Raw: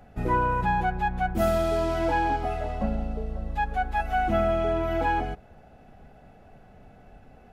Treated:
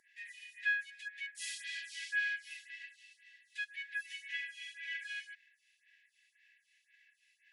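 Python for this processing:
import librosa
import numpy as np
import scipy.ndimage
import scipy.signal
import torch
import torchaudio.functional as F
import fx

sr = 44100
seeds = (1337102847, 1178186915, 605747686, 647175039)

y = fx.brickwall_bandpass(x, sr, low_hz=1600.0, high_hz=11000.0)
y = fx.stagger_phaser(y, sr, hz=1.9)
y = y * 10.0 ** (3.0 / 20.0)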